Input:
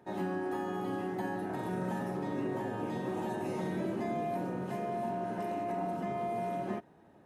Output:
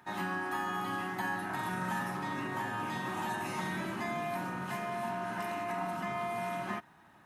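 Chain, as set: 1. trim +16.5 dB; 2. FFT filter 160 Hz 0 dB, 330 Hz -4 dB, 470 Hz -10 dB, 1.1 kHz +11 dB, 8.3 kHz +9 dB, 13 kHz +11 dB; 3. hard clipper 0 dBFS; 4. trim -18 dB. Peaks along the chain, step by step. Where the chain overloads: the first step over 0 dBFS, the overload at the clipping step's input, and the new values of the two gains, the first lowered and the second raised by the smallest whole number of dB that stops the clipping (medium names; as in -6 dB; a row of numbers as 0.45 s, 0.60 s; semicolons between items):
-7.0 dBFS, -4.5 dBFS, -4.5 dBFS, -22.5 dBFS; nothing clips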